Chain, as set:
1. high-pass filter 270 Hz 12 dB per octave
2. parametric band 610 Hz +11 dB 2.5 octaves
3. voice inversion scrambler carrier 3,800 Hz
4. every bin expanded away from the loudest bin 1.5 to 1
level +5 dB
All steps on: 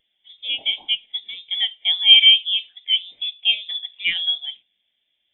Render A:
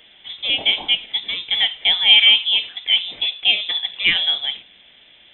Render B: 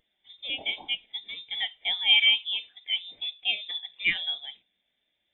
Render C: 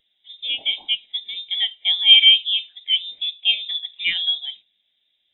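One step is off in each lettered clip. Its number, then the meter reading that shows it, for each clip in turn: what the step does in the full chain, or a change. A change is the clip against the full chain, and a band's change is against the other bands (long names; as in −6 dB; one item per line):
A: 4, change in momentary loudness spread −6 LU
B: 2, change in integrated loudness −9.0 LU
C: 1, change in momentary loudness spread −2 LU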